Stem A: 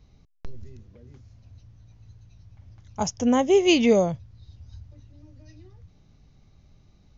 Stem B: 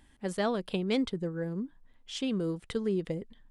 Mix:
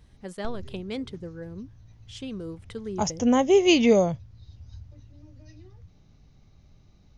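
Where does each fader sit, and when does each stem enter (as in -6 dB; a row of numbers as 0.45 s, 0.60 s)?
0.0 dB, -4.5 dB; 0.00 s, 0.00 s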